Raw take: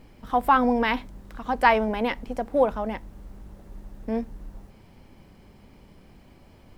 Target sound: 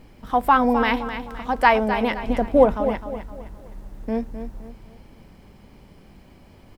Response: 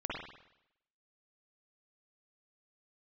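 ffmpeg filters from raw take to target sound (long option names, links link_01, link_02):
-filter_complex "[0:a]asettb=1/sr,asplit=3[link_01][link_02][link_03];[link_01]atrim=end=2.244[link_04];[link_02]atrim=start=2.24:end=2.74,asetpts=PTS-STARTPTS,afade=type=in:duration=0.004:curve=qsin,afade=type=out:start_time=0.496:duration=0.004:curve=qsin,lowshelf=frequency=420:gain=9[link_05];[link_03]atrim=start=2.736[link_06];[link_04][link_05]acrossfade=duration=0.004:curve1=hsin:curve2=qsin[link_07];[link_07][link_06]acrossfade=duration=0.004:curve1=qsin:curve2=hsin,aecho=1:1:258|516|774|1032:0.316|0.12|0.0457|0.0174,volume=2.5dB"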